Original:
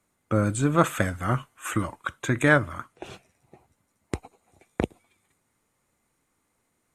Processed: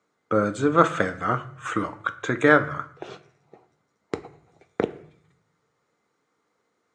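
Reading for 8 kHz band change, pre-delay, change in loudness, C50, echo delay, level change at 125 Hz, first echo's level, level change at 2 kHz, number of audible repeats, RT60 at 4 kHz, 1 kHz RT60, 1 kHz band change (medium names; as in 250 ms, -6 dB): -7.5 dB, 4 ms, +2.5 dB, 16.0 dB, no echo, -5.0 dB, no echo, +2.0 dB, no echo, 0.45 s, 0.55 s, +4.5 dB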